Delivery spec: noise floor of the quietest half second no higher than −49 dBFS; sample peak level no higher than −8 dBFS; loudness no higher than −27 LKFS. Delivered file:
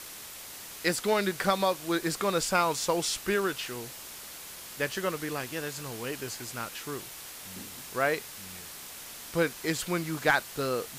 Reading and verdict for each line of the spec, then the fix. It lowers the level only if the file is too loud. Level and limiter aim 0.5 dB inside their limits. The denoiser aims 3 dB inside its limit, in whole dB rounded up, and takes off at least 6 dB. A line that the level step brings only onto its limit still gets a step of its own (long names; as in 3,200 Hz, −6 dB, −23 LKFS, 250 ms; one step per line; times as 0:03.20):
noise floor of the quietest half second −44 dBFS: out of spec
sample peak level −11.5 dBFS: in spec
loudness −31.0 LKFS: in spec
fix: broadband denoise 8 dB, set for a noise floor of −44 dBFS